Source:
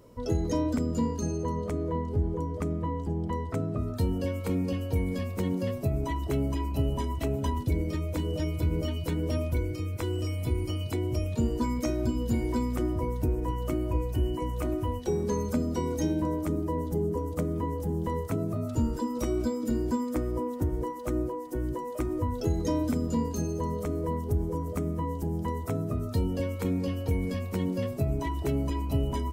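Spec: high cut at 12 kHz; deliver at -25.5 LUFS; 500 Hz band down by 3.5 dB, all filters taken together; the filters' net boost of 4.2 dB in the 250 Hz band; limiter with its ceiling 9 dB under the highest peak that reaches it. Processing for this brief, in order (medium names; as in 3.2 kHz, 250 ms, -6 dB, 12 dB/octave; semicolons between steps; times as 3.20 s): low-pass 12 kHz; peaking EQ 250 Hz +7.5 dB; peaking EQ 500 Hz -8 dB; trim +5.5 dB; peak limiter -16 dBFS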